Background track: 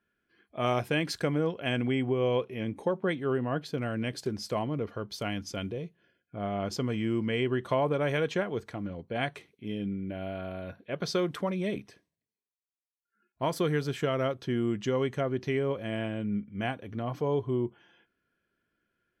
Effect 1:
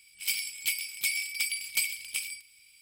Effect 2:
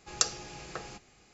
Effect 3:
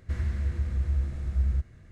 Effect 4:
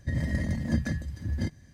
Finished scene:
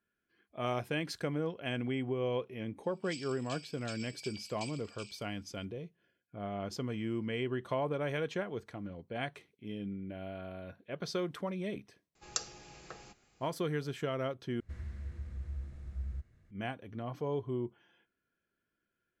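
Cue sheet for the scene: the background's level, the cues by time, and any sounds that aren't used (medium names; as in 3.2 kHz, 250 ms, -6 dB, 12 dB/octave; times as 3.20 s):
background track -6.5 dB
2.84 s: add 1 -12.5 dB + Chebyshev band-pass 2.4–7.7 kHz, order 5
12.15 s: add 2 -8.5 dB
14.60 s: replace with 3 -13.5 dB
not used: 4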